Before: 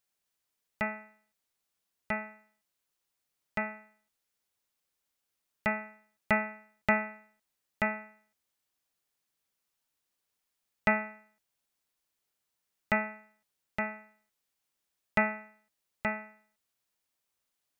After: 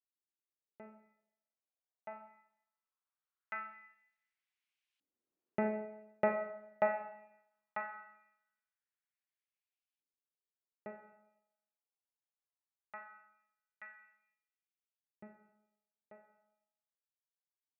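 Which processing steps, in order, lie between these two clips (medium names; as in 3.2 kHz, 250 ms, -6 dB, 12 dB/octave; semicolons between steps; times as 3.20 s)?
Doppler pass-by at 5.73 s, 5 m/s, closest 3.1 m; Schroeder reverb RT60 0.8 s, combs from 29 ms, DRR 7 dB; LFO band-pass saw up 0.2 Hz 280–2800 Hz; trim +8 dB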